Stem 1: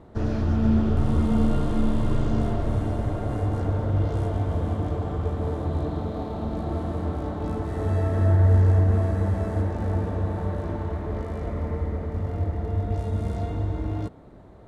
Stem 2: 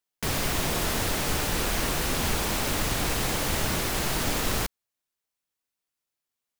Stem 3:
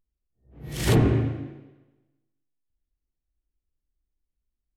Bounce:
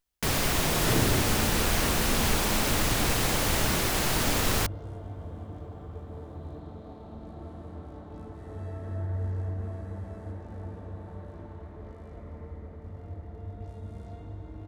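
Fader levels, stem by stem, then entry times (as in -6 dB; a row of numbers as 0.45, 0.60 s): -14.0, +1.0, -7.5 dB; 0.70, 0.00, 0.00 s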